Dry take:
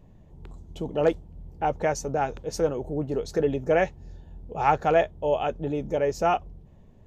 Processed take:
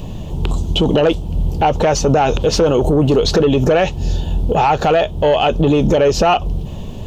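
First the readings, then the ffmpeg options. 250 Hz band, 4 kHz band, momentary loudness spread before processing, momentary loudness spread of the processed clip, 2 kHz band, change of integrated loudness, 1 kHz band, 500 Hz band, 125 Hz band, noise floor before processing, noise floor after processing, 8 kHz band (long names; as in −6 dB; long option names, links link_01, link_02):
+15.0 dB, +21.0 dB, 8 LU, 8 LU, +9.5 dB, +11.0 dB, +10.0 dB, +11.0 dB, +17.0 dB, −52 dBFS, −27 dBFS, +14.0 dB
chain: -filter_complex "[0:a]highshelf=frequency=2400:width_type=q:width=3:gain=6,acompressor=threshold=-29dB:ratio=3,asoftclip=type=tanh:threshold=-24dB,equalizer=frequency=1100:width_type=o:width=0.81:gain=2.5,acrossover=split=4000[link_01][link_02];[link_02]acompressor=threshold=-58dB:ratio=4:attack=1:release=60[link_03];[link_01][link_03]amix=inputs=2:normalize=0,alimiter=level_in=31dB:limit=-1dB:release=50:level=0:latency=1,volume=-5.5dB"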